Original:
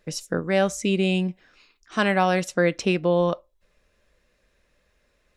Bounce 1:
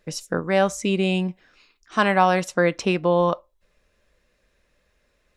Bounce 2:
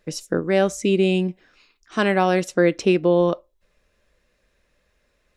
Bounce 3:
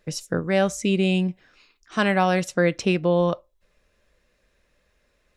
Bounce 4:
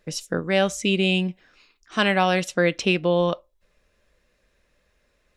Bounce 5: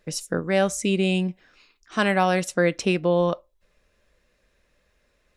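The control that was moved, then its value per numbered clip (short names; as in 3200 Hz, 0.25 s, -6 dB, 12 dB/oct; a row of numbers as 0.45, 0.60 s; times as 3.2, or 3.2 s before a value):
dynamic EQ, frequency: 990, 350, 110, 3100, 9600 Hz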